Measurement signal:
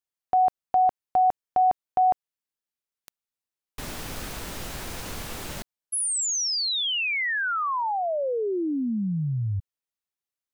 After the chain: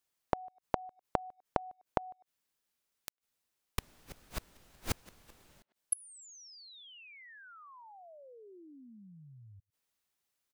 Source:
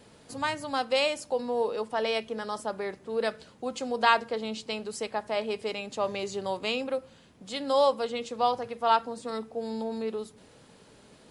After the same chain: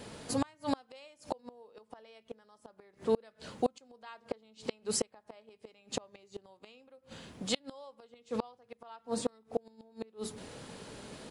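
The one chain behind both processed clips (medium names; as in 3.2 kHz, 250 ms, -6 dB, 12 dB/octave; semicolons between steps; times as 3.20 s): speakerphone echo 100 ms, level -26 dB; inverted gate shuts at -25 dBFS, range -35 dB; trim +7.5 dB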